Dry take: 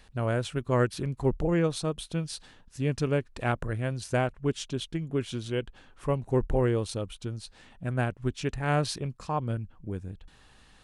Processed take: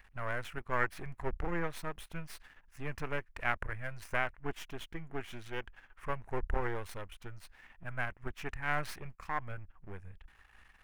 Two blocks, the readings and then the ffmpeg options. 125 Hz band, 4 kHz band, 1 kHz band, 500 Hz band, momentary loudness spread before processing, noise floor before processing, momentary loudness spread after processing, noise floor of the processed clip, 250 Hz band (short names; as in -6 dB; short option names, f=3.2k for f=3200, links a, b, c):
-14.5 dB, -11.0 dB, -4.0 dB, -12.0 dB, 12 LU, -57 dBFS, 15 LU, -65 dBFS, -14.5 dB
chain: -af "aeval=exprs='if(lt(val(0),0),0.251*val(0),val(0))':c=same,equalizer=f=125:t=o:w=1:g=-8,equalizer=f=250:t=o:w=1:g=-8,equalizer=f=500:t=o:w=1:g=-7,equalizer=f=2k:t=o:w=1:g=8,equalizer=f=4k:t=o:w=1:g=-11,equalizer=f=8k:t=o:w=1:g=-9"